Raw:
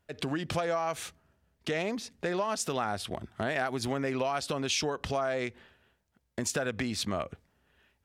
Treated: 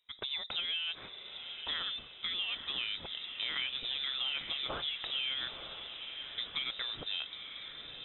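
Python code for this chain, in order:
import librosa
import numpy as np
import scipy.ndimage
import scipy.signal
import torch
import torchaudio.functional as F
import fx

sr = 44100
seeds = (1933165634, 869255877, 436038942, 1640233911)

y = fx.echo_diffused(x, sr, ms=925, feedback_pct=52, wet_db=-8.0)
y = fx.freq_invert(y, sr, carrier_hz=3800)
y = F.gain(torch.from_numpy(y), -6.0).numpy()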